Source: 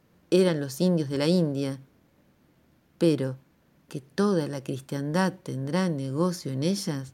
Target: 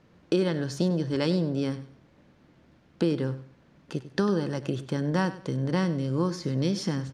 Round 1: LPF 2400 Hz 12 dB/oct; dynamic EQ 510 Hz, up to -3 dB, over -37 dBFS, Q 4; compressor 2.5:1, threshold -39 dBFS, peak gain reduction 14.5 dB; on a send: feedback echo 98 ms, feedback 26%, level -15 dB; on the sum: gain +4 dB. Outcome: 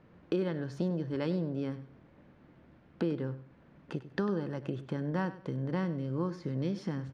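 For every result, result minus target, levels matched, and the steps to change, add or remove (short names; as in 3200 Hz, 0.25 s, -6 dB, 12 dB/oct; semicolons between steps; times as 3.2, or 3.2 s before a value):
4000 Hz band -6.5 dB; compressor: peak gain reduction +6.5 dB
change: LPF 5300 Hz 12 dB/oct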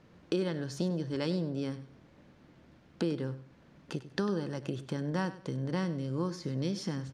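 compressor: peak gain reduction +6.5 dB
change: compressor 2.5:1, threshold -28 dBFS, peak gain reduction 8 dB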